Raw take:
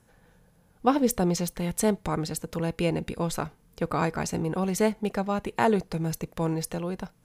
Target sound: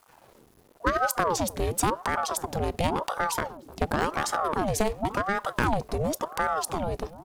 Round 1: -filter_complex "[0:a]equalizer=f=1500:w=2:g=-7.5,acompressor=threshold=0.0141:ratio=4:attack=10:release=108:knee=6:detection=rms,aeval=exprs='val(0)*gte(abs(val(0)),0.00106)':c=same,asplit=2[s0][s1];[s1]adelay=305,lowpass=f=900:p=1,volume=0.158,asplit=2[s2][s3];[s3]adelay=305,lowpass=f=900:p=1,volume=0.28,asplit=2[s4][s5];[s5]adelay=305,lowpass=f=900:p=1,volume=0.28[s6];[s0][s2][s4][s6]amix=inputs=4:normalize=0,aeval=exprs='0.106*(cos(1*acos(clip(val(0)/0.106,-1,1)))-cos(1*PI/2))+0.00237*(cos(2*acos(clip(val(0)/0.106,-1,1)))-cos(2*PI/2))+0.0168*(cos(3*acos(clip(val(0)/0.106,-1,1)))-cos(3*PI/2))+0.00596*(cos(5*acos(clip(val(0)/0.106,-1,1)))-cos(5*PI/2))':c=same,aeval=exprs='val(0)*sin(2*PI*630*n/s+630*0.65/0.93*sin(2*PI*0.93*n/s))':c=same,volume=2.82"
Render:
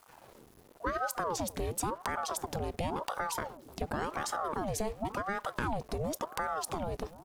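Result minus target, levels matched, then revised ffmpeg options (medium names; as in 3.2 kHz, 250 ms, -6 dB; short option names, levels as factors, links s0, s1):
compression: peak gain reduction +8.5 dB
-filter_complex "[0:a]equalizer=f=1500:w=2:g=-7.5,acompressor=threshold=0.0501:ratio=4:attack=10:release=108:knee=6:detection=rms,aeval=exprs='val(0)*gte(abs(val(0)),0.00106)':c=same,asplit=2[s0][s1];[s1]adelay=305,lowpass=f=900:p=1,volume=0.158,asplit=2[s2][s3];[s3]adelay=305,lowpass=f=900:p=1,volume=0.28,asplit=2[s4][s5];[s5]adelay=305,lowpass=f=900:p=1,volume=0.28[s6];[s0][s2][s4][s6]amix=inputs=4:normalize=0,aeval=exprs='0.106*(cos(1*acos(clip(val(0)/0.106,-1,1)))-cos(1*PI/2))+0.00237*(cos(2*acos(clip(val(0)/0.106,-1,1)))-cos(2*PI/2))+0.0168*(cos(3*acos(clip(val(0)/0.106,-1,1)))-cos(3*PI/2))+0.00596*(cos(5*acos(clip(val(0)/0.106,-1,1)))-cos(5*PI/2))':c=same,aeval=exprs='val(0)*sin(2*PI*630*n/s+630*0.65/0.93*sin(2*PI*0.93*n/s))':c=same,volume=2.82"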